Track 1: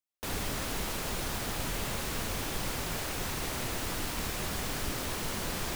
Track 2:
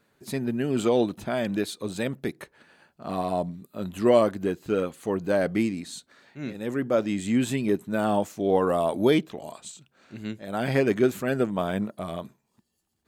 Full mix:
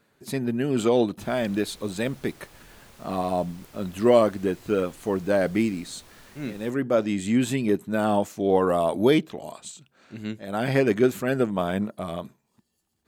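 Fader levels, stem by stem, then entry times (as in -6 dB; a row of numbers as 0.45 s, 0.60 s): -17.0 dB, +1.5 dB; 0.95 s, 0.00 s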